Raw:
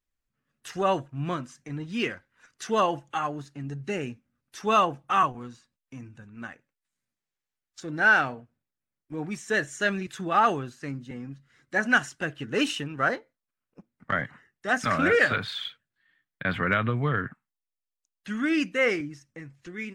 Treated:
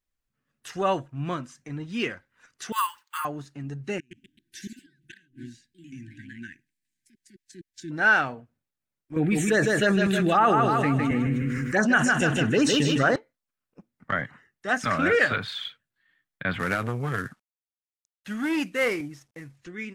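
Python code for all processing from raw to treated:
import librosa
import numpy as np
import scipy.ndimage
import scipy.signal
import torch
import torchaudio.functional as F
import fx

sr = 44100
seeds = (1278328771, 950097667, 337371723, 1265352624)

y = fx.chain(x, sr, fx.brickwall_highpass(low_hz=880.0),
    fx.resample_bad(factor=4, down='none', up='hold'), at=(2.72, 3.25))
y = fx.chain(y, sr, fx.gate_flip(shuts_db=-22.0, range_db=-32),
    fx.echo_pitch(ms=131, semitones=2, count=3, db_per_echo=-6.0),
    fx.brickwall_bandstop(low_hz=380.0, high_hz=1500.0), at=(3.98, 7.91))
y = fx.chain(y, sr, fx.env_phaser(low_hz=580.0, high_hz=5000.0, full_db=-18.0),
    fx.echo_feedback(ms=156, feedback_pct=42, wet_db=-7),
    fx.env_flatten(amount_pct=70), at=(9.16, 13.16))
y = fx.chain(y, sr, fx.cvsd(bps=64000),
    fx.transformer_sat(knee_hz=700.0), at=(16.59, 19.58))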